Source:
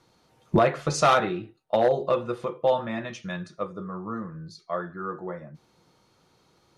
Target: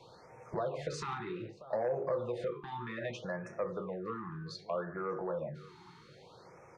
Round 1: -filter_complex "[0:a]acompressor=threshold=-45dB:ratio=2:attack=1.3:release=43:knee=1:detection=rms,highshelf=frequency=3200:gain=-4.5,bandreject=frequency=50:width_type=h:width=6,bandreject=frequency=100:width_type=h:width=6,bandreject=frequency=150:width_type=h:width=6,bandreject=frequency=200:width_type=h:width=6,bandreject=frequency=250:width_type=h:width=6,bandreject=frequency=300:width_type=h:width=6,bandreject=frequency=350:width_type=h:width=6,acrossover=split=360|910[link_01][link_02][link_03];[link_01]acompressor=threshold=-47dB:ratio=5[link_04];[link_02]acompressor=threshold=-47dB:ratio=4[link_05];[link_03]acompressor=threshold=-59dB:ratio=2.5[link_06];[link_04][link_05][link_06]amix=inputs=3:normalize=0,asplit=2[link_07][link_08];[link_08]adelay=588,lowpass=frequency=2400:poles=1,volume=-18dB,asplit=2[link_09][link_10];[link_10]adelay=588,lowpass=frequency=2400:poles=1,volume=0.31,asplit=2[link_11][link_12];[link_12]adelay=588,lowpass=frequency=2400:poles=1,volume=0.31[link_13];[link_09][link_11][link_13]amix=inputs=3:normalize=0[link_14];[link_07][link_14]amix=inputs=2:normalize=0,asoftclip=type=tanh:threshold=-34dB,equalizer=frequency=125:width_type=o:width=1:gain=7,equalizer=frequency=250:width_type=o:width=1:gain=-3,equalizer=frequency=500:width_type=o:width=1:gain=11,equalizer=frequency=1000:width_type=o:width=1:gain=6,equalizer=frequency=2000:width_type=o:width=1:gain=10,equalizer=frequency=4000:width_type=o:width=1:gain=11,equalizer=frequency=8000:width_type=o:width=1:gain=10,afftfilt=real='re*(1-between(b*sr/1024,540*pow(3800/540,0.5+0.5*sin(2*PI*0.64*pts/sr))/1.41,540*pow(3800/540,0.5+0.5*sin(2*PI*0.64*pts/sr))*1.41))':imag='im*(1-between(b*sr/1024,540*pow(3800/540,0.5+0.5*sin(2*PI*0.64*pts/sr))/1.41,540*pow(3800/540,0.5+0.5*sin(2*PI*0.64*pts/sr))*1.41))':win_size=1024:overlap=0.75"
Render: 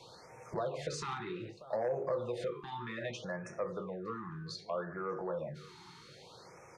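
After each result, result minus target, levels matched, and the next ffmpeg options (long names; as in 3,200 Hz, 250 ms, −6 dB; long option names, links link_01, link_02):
8,000 Hz band +4.5 dB; downward compressor: peak gain reduction +4 dB
-filter_complex "[0:a]acompressor=threshold=-45dB:ratio=2:attack=1.3:release=43:knee=1:detection=rms,highshelf=frequency=3200:gain=-15.5,bandreject=frequency=50:width_type=h:width=6,bandreject=frequency=100:width_type=h:width=6,bandreject=frequency=150:width_type=h:width=6,bandreject=frequency=200:width_type=h:width=6,bandreject=frequency=250:width_type=h:width=6,bandreject=frequency=300:width_type=h:width=6,bandreject=frequency=350:width_type=h:width=6,acrossover=split=360|910[link_01][link_02][link_03];[link_01]acompressor=threshold=-47dB:ratio=5[link_04];[link_02]acompressor=threshold=-47dB:ratio=4[link_05];[link_03]acompressor=threshold=-59dB:ratio=2.5[link_06];[link_04][link_05][link_06]amix=inputs=3:normalize=0,asplit=2[link_07][link_08];[link_08]adelay=588,lowpass=frequency=2400:poles=1,volume=-18dB,asplit=2[link_09][link_10];[link_10]adelay=588,lowpass=frequency=2400:poles=1,volume=0.31,asplit=2[link_11][link_12];[link_12]adelay=588,lowpass=frequency=2400:poles=1,volume=0.31[link_13];[link_09][link_11][link_13]amix=inputs=3:normalize=0[link_14];[link_07][link_14]amix=inputs=2:normalize=0,asoftclip=type=tanh:threshold=-34dB,equalizer=frequency=125:width_type=o:width=1:gain=7,equalizer=frequency=250:width_type=o:width=1:gain=-3,equalizer=frequency=500:width_type=o:width=1:gain=11,equalizer=frequency=1000:width_type=o:width=1:gain=6,equalizer=frequency=2000:width_type=o:width=1:gain=10,equalizer=frequency=4000:width_type=o:width=1:gain=11,equalizer=frequency=8000:width_type=o:width=1:gain=10,afftfilt=real='re*(1-between(b*sr/1024,540*pow(3800/540,0.5+0.5*sin(2*PI*0.64*pts/sr))/1.41,540*pow(3800/540,0.5+0.5*sin(2*PI*0.64*pts/sr))*1.41))':imag='im*(1-between(b*sr/1024,540*pow(3800/540,0.5+0.5*sin(2*PI*0.64*pts/sr))/1.41,540*pow(3800/540,0.5+0.5*sin(2*PI*0.64*pts/sr))*1.41))':win_size=1024:overlap=0.75"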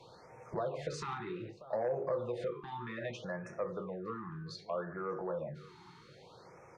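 downward compressor: peak gain reduction +4 dB
-filter_complex "[0:a]acompressor=threshold=-37dB:ratio=2:attack=1.3:release=43:knee=1:detection=rms,highshelf=frequency=3200:gain=-15.5,bandreject=frequency=50:width_type=h:width=6,bandreject=frequency=100:width_type=h:width=6,bandreject=frequency=150:width_type=h:width=6,bandreject=frequency=200:width_type=h:width=6,bandreject=frequency=250:width_type=h:width=6,bandreject=frequency=300:width_type=h:width=6,bandreject=frequency=350:width_type=h:width=6,acrossover=split=360|910[link_01][link_02][link_03];[link_01]acompressor=threshold=-47dB:ratio=5[link_04];[link_02]acompressor=threshold=-47dB:ratio=4[link_05];[link_03]acompressor=threshold=-59dB:ratio=2.5[link_06];[link_04][link_05][link_06]amix=inputs=3:normalize=0,asplit=2[link_07][link_08];[link_08]adelay=588,lowpass=frequency=2400:poles=1,volume=-18dB,asplit=2[link_09][link_10];[link_10]adelay=588,lowpass=frequency=2400:poles=1,volume=0.31,asplit=2[link_11][link_12];[link_12]adelay=588,lowpass=frequency=2400:poles=1,volume=0.31[link_13];[link_09][link_11][link_13]amix=inputs=3:normalize=0[link_14];[link_07][link_14]amix=inputs=2:normalize=0,asoftclip=type=tanh:threshold=-34dB,equalizer=frequency=125:width_type=o:width=1:gain=7,equalizer=frequency=250:width_type=o:width=1:gain=-3,equalizer=frequency=500:width_type=o:width=1:gain=11,equalizer=frequency=1000:width_type=o:width=1:gain=6,equalizer=frequency=2000:width_type=o:width=1:gain=10,equalizer=frequency=4000:width_type=o:width=1:gain=11,equalizer=frequency=8000:width_type=o:width=1:gain=10,afftfilt=real='re*(1-between(b*sr/1024,540*pow(3800/540,0.5+0.5*sin(2*PI*0.64*pts/sr))/1.41,540*pow(3800/540,0.5+0.5*sin(2*PI*0.64*pts/sr))*1.41))':imag='im*(1-between(b*sr/1024,540*pow(3800/540,0.5+0.5*sin(2*PI*0.64*pts/sr))/1.41,540*pow(3800/540,0.5+0.5*sin(2*PI*0.64*pts/sr))*1.41))':win_size=1024:overlap=0.75"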